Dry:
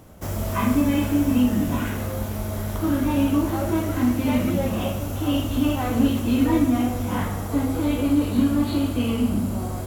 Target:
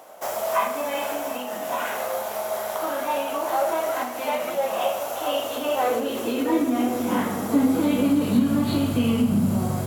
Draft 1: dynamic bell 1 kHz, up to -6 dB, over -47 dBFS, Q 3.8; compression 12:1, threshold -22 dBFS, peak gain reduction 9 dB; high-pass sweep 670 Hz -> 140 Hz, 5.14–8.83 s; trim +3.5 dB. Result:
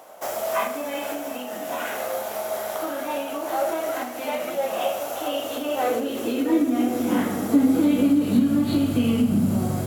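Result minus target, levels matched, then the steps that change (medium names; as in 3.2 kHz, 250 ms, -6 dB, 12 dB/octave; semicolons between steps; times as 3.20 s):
1 kHz band -3.0 dB
change: dynamic bell 300 Hz, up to -6 dB, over -47 dBFS, Q 3.8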